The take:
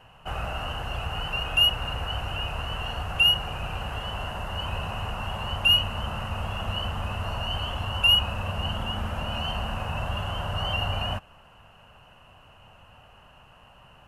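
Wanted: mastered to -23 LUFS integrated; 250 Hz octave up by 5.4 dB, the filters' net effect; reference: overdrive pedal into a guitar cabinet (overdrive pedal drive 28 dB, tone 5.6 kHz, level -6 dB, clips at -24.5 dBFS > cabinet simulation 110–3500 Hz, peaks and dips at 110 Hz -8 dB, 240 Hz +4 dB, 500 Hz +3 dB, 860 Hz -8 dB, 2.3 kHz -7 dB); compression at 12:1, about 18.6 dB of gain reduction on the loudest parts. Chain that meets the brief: peaking EQ 250 Hz +5.5 dB; compression 12:1, threshold -35 dBFS; overdrive pedal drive 28 dB, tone 5.6 kHz, level -6 dB, clips at -24.5 dBFS; cabinet simulation 110–3500 Hz, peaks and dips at 110 Hz -8 dB, 240 Hz +4 dB, 500 Hz +3 dB, 860 Hz -8 dB, 2.3 kHz -7 dB; trim +10 dB

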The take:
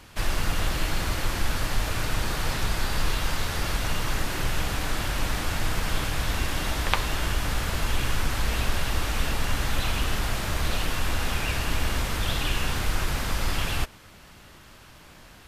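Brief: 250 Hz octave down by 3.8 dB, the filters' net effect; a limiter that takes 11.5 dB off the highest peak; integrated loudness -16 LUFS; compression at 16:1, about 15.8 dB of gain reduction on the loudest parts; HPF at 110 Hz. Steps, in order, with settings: high-pass 110 Hz; peaking EQ 250 Hz -5 dB; compression 16:1, threshold -36 dBFS; trim +24.5 dB; peak limiter -7 dBFS

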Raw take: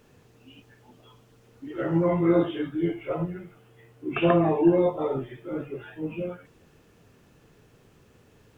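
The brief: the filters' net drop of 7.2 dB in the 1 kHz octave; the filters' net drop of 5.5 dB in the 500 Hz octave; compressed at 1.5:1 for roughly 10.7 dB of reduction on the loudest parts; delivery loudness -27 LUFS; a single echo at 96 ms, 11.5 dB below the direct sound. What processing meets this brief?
peaking EQ 500 Hz -6 dB; peaking EQ 1 kHz -7.5 dB; compression 1.5:1, threshold -48 dBFS; delay 96 ms -11.5 dB; trim +11 dB

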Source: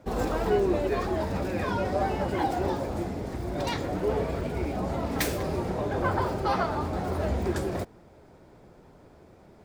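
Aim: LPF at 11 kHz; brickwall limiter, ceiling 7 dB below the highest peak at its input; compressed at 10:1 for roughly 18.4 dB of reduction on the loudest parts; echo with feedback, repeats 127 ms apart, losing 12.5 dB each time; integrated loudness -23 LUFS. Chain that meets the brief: low-pass 11 kHz; compression 10:1, threshold -40 dBFS; peak limiter -37 dBFS; feedback delay 127 ms, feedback 24%, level -12.5 dB; trim +23.5 dB

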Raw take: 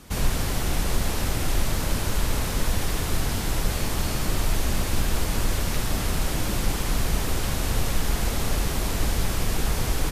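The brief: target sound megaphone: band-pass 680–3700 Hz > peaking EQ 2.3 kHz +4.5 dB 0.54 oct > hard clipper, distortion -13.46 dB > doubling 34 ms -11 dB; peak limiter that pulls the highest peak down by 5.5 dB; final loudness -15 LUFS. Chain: peak limiter -15.5 dBFS; band-pass 680–3700 Hz; peaking EQ 2.3 kHz +4.5 dB 0.54 oct; hard clipper -32.5 dBFS; doubling 34 ms -11 dB; trim +20 dB

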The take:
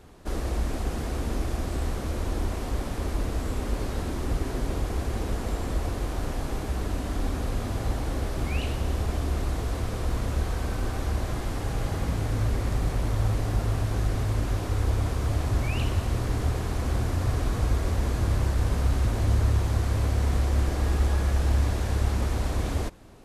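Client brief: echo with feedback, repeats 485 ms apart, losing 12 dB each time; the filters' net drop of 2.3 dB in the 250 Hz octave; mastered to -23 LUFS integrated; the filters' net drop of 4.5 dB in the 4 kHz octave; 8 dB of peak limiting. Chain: peaking EQ 250 Hz -3 dB; peaking EQ 4 kHz -6 dB; peak limiter -21 dBFS; feedback delay 485 ms, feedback 25%, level -12 dB; trim +8.5 dB

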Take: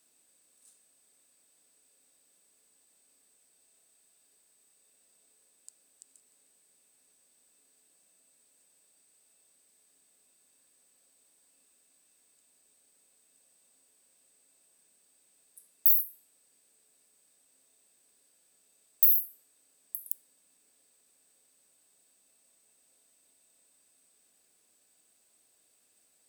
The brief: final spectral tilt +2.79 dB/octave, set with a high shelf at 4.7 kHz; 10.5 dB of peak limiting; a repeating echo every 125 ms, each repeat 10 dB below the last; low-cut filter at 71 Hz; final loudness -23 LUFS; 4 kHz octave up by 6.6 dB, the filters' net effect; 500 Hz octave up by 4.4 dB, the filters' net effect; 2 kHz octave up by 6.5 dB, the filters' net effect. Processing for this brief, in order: high-pass 71 Hz; peaking EQ 500 Hz +5 dB; peaking EQ 2 kHz +6 dB; peaking EQ 4 kHz +8.5 dB; treble shelf 4.7 kHz -3.5 dB; peak limiter -17 dBFS; feedback delay 125 ms, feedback 32%, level -10 dB; trim +12.5 dB

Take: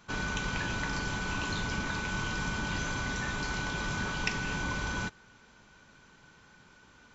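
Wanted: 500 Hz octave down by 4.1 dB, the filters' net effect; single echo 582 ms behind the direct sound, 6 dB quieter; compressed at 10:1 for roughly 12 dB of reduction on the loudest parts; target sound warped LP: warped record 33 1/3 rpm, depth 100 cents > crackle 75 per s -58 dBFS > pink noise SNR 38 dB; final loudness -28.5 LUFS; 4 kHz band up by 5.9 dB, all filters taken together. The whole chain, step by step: peaking EQ 500 Hz -5.5 dB; peaking EQ 4 kHz +7.5 dB; compression 10:1, threshold -36 dBFS; delay 582 ms -6 dB; warped record 33 1/3 rpm, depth 100 cents; crackle 75 per s -58 dBFS; pink noise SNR 38 dB; trim +10 dB

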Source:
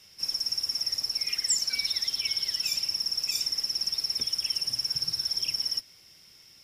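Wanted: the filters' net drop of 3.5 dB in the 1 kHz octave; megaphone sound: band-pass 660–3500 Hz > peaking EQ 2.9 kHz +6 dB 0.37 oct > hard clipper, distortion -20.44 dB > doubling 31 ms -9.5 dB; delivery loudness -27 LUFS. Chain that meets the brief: band-pass 660–3500 Hz; peaking EQ 1 kHz -3.5 dB; peaking EQ 2.9 kHz +6 dB 0.37 oct; hard clipper -29 dBFS; doubling 31 ms -9.5 dB; trim +7.5 dB

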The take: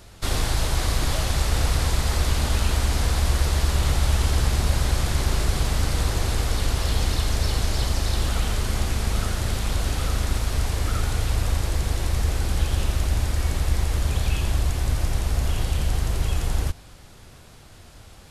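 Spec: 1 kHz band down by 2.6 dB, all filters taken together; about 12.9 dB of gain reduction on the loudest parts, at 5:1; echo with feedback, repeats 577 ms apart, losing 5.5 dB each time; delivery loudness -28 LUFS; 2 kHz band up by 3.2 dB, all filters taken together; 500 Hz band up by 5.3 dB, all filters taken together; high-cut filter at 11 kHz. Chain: low-pass 11 kHz; peaking EQ 500 Hz +8.5 dB; peaking EQ 1 kHz -8.5 dB; peaking EQ 2 kHz +6 dB; compression 5:1, threshold -31 dBFS; feedback delay 577 ms, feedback 53%, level -5.5 dB; trim +6.5 dB

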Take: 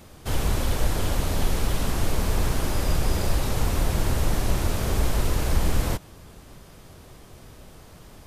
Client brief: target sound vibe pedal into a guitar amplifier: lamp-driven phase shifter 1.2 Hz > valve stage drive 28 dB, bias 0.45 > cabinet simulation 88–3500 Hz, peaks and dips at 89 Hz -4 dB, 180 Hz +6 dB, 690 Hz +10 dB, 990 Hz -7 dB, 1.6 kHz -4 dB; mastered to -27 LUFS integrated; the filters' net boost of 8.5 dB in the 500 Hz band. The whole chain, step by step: peaking EQ 500 Hz +7 dB; lamp-driven phase shifter 1.2 Hz; valve stage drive 28 dB, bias 0.45; cabinet simulation 88–3500 Hz, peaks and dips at 89 Hz -4 dB, 180 Hz +6 dB, 690 Hz +10 dB, 990 Hz -7 dB, 1.6 kHz -4 dB; trim +8 dB

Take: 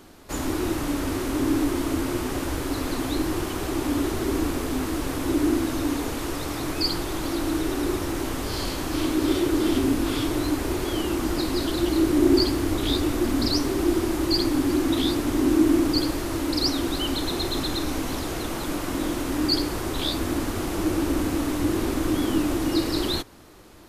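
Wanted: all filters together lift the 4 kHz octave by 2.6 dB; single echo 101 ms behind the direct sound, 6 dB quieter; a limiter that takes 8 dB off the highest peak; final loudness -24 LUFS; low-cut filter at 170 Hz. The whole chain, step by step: high-pass 170 Hz; peaking EQ 4 kHz +3 dB; peak limiter -15.5 dBFS; delay 101 ms -6 dB; trim +1 dB

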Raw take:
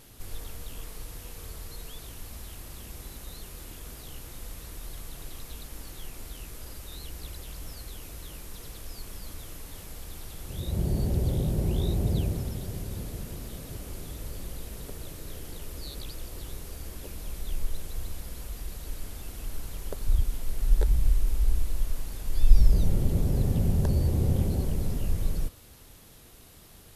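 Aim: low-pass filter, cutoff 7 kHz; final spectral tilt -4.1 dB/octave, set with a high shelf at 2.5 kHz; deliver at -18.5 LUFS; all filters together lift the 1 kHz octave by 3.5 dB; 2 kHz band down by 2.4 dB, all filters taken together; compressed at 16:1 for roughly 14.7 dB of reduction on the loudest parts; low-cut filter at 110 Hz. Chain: high-pass 110 Hz; low-pass 7 kHz; peaking EQ 1 kHz +5.5 dB; peaking EQ 2 kHz -8 dB; treble shelf 2.5 kHz +6 dB; compression 16:1, threshold -39 dBFS; trim +26.5 dB

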